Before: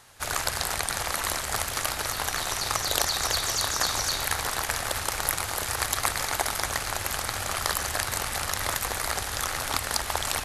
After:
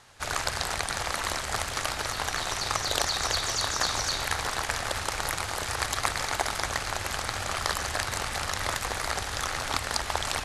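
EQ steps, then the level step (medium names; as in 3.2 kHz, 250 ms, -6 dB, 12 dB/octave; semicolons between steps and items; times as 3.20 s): distance through air 85 m; treble shelf 8.1 kHz +10 dB; 0.0 dB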